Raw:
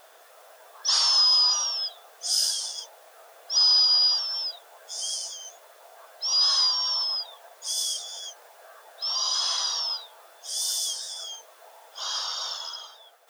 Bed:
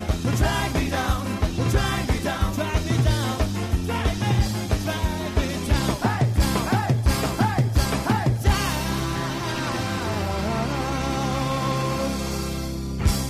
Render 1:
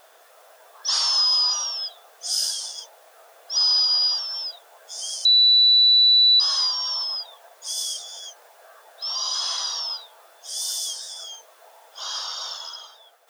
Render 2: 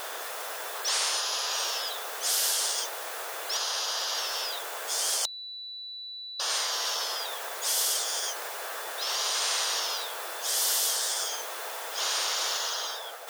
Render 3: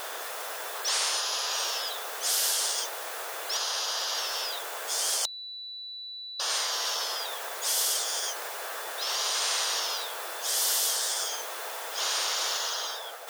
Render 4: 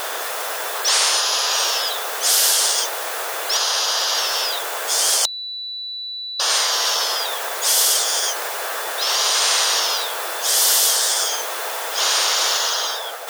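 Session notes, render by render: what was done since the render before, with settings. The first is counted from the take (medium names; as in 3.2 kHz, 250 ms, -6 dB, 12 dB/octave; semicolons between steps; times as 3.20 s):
5.25–6.40 s: bleep 3.96 kHz -12 dBFS
compression, threshold -22 dBFS, peak gain reduction 7.5 dB; spectrum-flattening compressor 4:1
no audible change
trim +10.5 dB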